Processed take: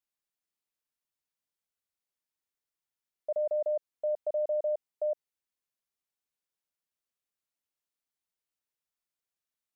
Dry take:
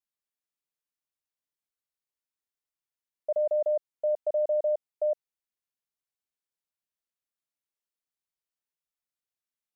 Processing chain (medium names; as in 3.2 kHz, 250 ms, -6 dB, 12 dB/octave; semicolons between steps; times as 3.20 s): peak limiter -25.5 dBFS, peak gain reduction 3.5 dB